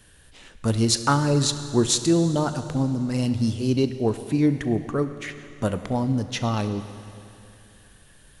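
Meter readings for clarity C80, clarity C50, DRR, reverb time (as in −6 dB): 11.0 dB, 10.5 dB, 9.5 dB, 2.8 s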